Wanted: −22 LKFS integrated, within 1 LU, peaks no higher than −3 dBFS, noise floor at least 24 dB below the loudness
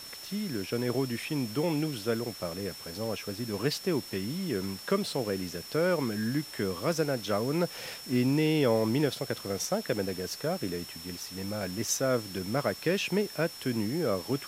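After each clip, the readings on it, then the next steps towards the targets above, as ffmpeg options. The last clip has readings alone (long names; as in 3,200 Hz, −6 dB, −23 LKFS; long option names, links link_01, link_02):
interfering tone 5,400 Hz; level of the tone −44 dBFS; background noise floor −45 dBFS; target noise floor −55 dBFS; integrated loudness −31.0 LKFS; sample peak −13.0 dBFS; target loudness −22.0 LKFS
→ -af "bandreject=frequency=5400:width=30"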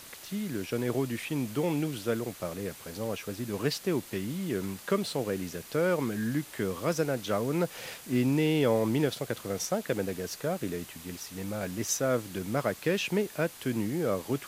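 interfering tone none found; background noise floor −48 dBFS; target noise floor −55 dBFS
→ -af "afftdn=noise_reduction=7:noise_floor=-48"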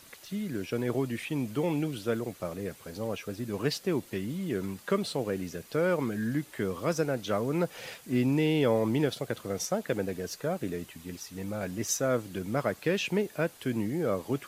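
background noise floor −53 dBFS; target noise floor −55 dBFS
→ -af "afftdn=noise_reduction=6:noise_floor=-53"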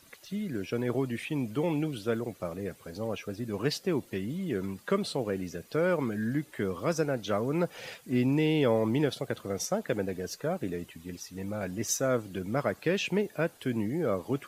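background noise floor −57 dBFS; integrated loudness −31.5 LKFS; sample peak −13.5 dBFS; target loudness −22.0 LKFS
→ -af "volume=9.5dB"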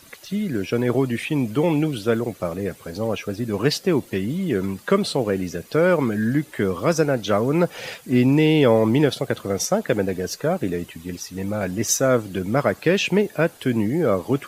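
integrated loudness −22.0 LKFS; sample peak −4.0 dBFS; background noise floor −47 dBFS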